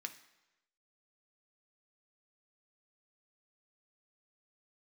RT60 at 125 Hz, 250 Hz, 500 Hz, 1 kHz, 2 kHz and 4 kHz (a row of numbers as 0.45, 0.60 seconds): 0.95, 0.90, 1.0, 1.0, 1.0, 0.95 seconds